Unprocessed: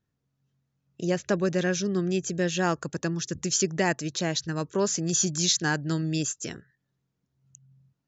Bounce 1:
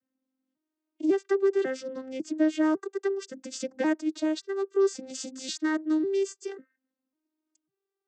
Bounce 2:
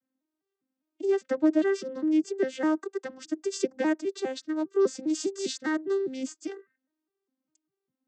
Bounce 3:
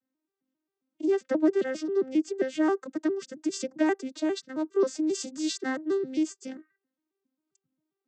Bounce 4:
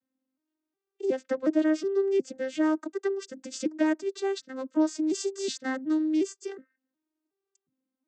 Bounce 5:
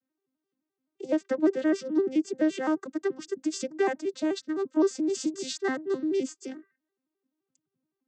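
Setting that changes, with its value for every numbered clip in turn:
vocoder with an arpeggio as carrier, a note every: 548, 202, 134, 365, 86 milliseconds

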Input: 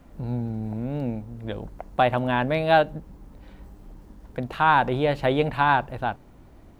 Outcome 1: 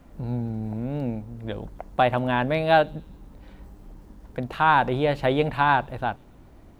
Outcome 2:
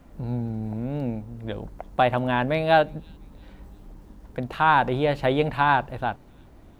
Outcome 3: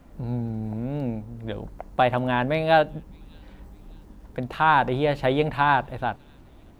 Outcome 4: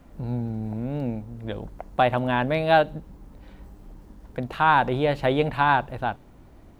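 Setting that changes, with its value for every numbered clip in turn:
delay with a high-pass on its return, delay time: 132, 343, 606, 63 milliseconds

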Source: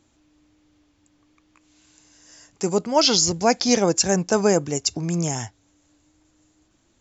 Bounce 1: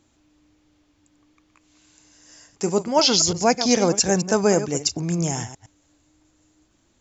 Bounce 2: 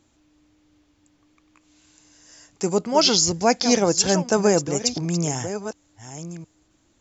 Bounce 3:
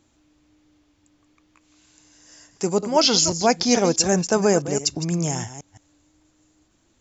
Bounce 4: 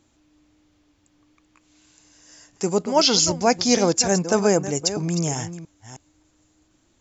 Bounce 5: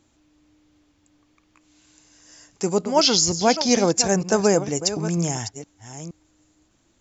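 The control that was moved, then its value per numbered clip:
delay that plays each chunk backwards, delay time: 111, 716, 165, 314, 470 milliseconds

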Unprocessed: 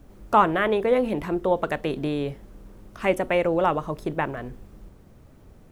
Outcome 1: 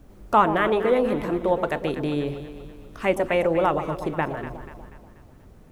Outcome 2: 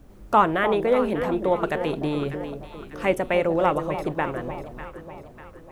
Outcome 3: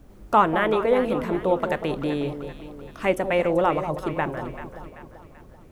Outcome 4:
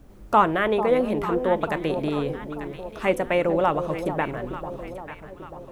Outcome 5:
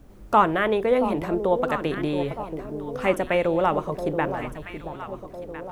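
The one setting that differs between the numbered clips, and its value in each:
delay that swaps between a low-pass and a high-pass, delay time: 121, 298, 193, 445, 677 milliseconds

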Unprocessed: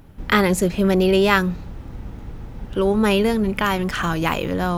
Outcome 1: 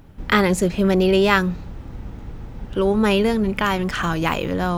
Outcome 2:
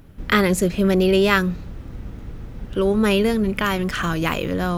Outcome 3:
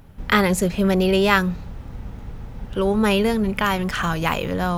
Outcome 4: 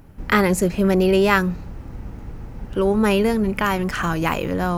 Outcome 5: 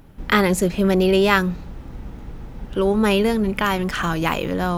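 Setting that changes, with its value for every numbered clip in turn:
parametric band, centre frequency: 12,000, 860, 320, 3,500, 92 Hertz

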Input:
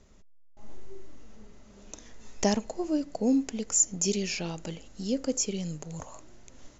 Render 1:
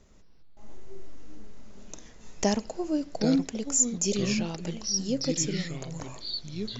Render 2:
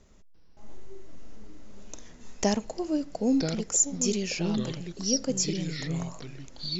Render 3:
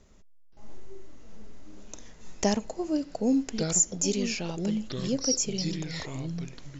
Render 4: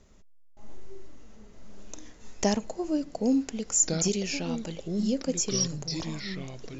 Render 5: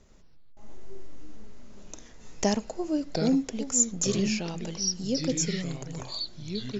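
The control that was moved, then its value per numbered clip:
delay with pitch and tempo change per echo, delay time: 152, 344, 523, 819, 88 milliseconds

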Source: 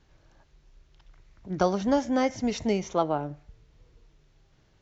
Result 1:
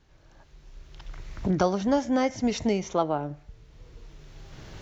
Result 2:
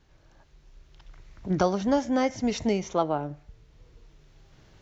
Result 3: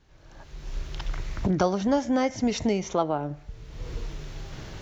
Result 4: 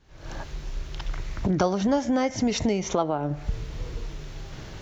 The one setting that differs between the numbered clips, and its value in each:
camcorder AGC, rising by: 13, 5.3, 32, 79 dB per second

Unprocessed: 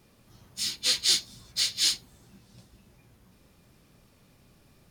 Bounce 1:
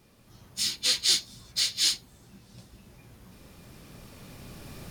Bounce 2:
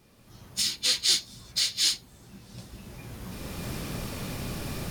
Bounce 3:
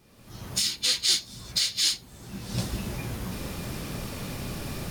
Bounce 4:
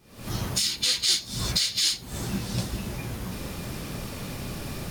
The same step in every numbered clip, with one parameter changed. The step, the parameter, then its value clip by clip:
camcorder AGC, rising by: 5.5, 14, 35, 90 dB per second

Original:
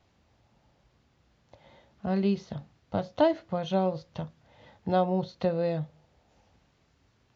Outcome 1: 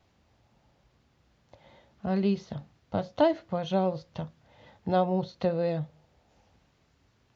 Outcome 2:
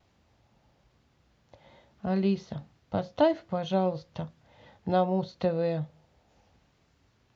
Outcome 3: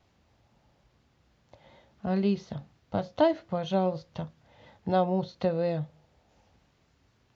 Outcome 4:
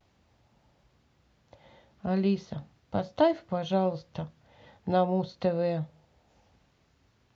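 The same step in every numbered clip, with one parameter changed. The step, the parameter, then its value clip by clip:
pitch vibrato, speed: 12, 1.2, 4.1, 0.39 Hertz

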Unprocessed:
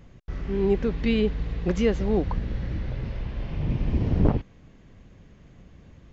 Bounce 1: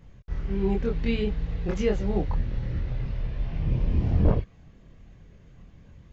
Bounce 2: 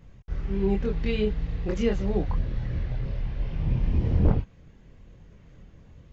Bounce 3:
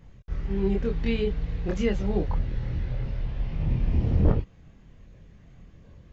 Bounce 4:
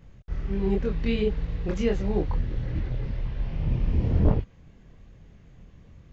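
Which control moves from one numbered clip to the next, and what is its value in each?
multi-voice chorus, speed: 0.48, 0.75, 0.31, 3 Hertz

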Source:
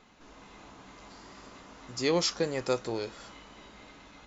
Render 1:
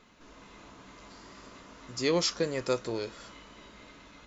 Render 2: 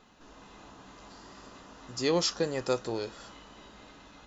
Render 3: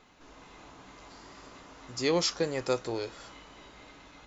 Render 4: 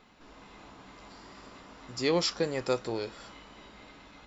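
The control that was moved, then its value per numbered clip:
notch filter, centre frequency: 790, 2,200, 210, 6,400 Hertz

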